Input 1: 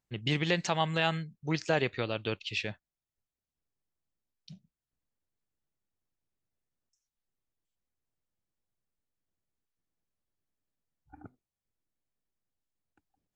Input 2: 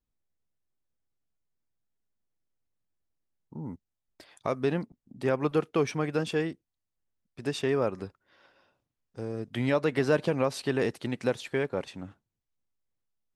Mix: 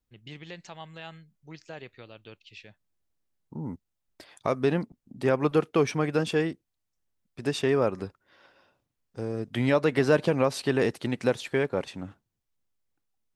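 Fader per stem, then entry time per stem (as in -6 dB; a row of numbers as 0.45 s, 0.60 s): -14.0 dB, +3.0 dB; 0.00 s, 0.00 s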